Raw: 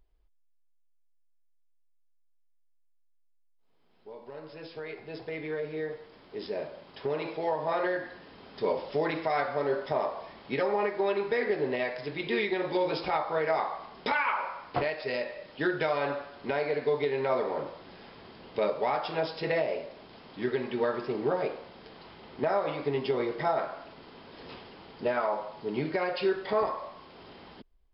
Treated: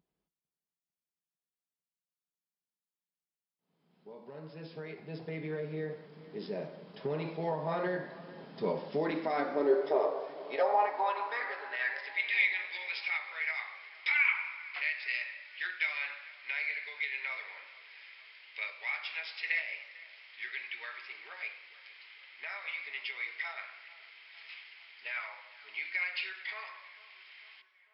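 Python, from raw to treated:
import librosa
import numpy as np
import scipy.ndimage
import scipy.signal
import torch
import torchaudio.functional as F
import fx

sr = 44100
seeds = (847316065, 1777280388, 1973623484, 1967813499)

y = fx.filter_sweep_highpass(x, sr, from_hz=170.0, to_hz=2200.0, start_s=8.77, end_s=12.31, q=5.1)
y = fx.echo_wet_lowpass(y, sr, ms=449, feedback_pct=57, hz=2200.0, wet_db=-18.0)
y = fx.echo_warbled(y, sr, ms=96, feedback_pct=70, rate_hz=2.8, cents=112, wet_db=-21.0)
y = y * librosa.db_to_amplitude(-5.5)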